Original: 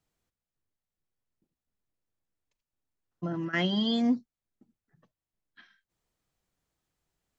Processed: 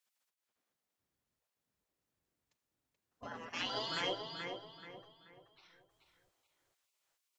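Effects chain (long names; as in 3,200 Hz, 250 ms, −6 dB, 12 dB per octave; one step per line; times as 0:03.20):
feedback echo with a low-pass in the loop 431 ms, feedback 37%, low-pass 3,300 Hz, level −5 dB
gate on every frequency bin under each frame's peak −20 dB weak
level +3.5 dB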